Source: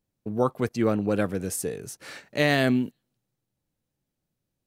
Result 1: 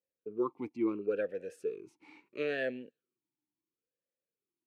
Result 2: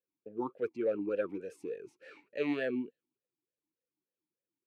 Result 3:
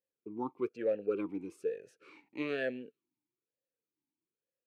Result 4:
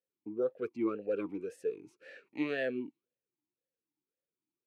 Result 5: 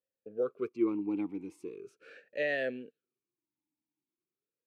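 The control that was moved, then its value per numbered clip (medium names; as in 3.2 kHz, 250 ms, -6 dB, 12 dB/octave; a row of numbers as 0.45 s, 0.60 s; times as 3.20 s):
talking filter, rate: 0.73 Hz, 3.4 Hz, 1.1 Hz, 1.9 Hz, 0.4 Hz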